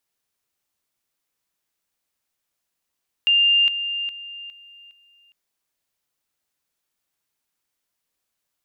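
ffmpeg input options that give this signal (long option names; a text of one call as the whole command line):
ffmpeg -f lavfi -i "aevalsrc='pow(10,(-13.5-10*floor(t/0.41))/20)*sin(2*PI*2800*t)':duration=2.05:sample_rate=44100" out.wav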